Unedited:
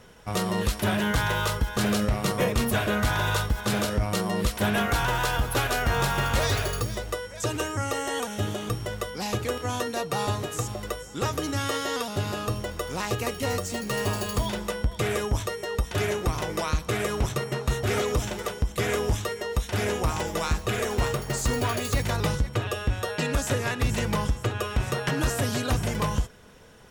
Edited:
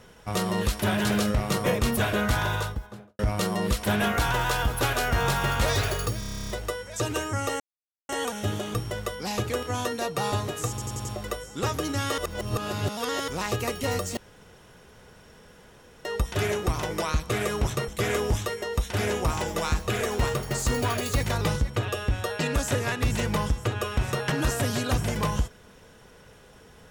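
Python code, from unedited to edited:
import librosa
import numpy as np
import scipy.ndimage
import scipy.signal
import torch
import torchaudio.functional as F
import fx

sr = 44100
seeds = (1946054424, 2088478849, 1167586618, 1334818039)

y = fx.studio_fade_out(x, sr, start_s=3.06, length_s=0.87)
y = fx.edit(y, sr, fx.cut(start_s=1.05, length_s=0.74),
    fx.stutter(start_s=6.93, slice_s=0.03, count=11),
    fx.insert_silence(at_s=8.04, length_s=0.49),
    fx.stutter(start_s=10.64, slice_s=0.09, count=5),
    fx.reverse_span(start_s=11.77, length_s=1.1),
    fx.room_tone_fill(start_s=13.76, length_s=1.88),
    fx.cut(start_s=17.47, length_s=1.2), tone=tone)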